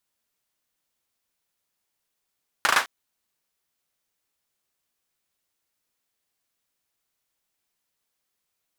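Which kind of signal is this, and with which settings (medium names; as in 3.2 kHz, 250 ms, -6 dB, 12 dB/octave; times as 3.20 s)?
hand clap length 0.21 s, apart 37 ms, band 1.3 kHz, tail 0.24 s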